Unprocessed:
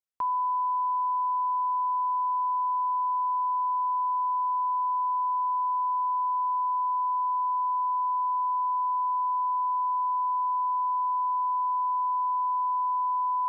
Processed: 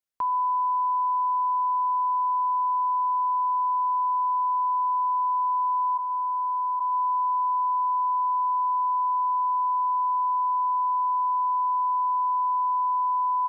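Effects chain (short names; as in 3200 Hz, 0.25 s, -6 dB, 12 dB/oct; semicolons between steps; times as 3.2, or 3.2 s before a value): 5.97–6.79 HPF 1000 Hz -> 930 Hz 24 dB/oct; echo 0.123 s -22.5 dB; gain +2 dB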